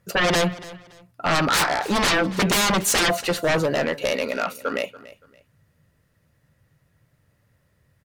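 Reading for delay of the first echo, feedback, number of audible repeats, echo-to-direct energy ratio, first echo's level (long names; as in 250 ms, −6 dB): 285 ms, 28%, 2, −18.0 dB, −18.5 dB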